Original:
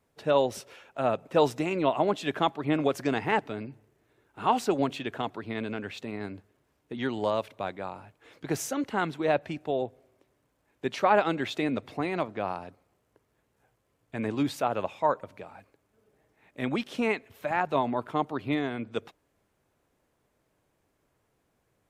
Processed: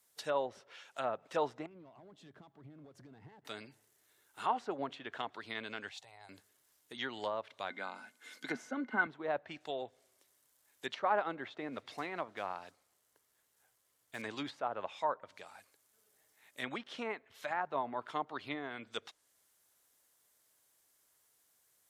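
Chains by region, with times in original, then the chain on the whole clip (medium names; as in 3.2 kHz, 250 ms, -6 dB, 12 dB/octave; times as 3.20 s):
1.66–3.45 s: compression 5:1, threshold -33 dBFS + waveshaping leveller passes 2 + band-pass filter 120 Hz, Q 1.4
5.89–6.29 s: FFT filter 140 Hz 0 dB, 200 Hz -27 dB, 360 Hz -19 dB, 800 Hz +7 dB, 1.2 kHz -9 dB + compression 2:1, threshold -47 dBFS
7.70–9.07 s: high-pass 160 Hz 24 dB/octave + small resonant body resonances 240/1500/2100 Hz, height 17 dB, ringing for 90 ms
11.42–14.22 s: treble shelf 4.3 kHz -4.5 dB + modulation noise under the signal 30 dB
whole clip: pre-emphasis filter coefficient 0.97; low-pass that closes with the level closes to 1.2 kHz, closed at -42.5 dBFS; peaking EQ 2.5 kHz -6 dB 0.29 oct; trim +11 dB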